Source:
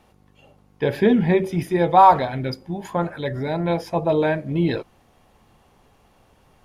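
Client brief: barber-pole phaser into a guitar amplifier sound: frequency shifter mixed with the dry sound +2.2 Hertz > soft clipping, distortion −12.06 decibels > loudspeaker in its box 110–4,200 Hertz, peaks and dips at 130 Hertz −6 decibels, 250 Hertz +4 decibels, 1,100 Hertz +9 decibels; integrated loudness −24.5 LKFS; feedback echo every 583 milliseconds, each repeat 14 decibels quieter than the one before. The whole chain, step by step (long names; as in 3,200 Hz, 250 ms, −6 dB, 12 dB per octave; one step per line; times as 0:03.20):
repeating echo 583 ms, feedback 20%, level −14 dB
frequency shifter mixed with the dry sound +2.2 Hz
soft clipping −12 dBFS
loudspeaker in its box 110–4,200 Hz, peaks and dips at 130 Hz −6 dB, 250 Hz +4 dB, 1,100 Hz +9 dB
level −2 dB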